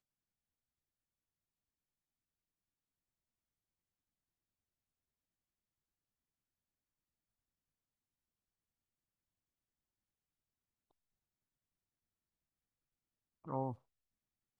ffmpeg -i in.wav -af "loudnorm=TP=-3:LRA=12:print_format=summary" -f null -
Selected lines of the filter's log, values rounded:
Input Integrated:    -42.1 LUFS
Input True Peak:     -25.6 dBTP
Input LRA:             0.0 LU
Input Threshold:     -53.5 LUFS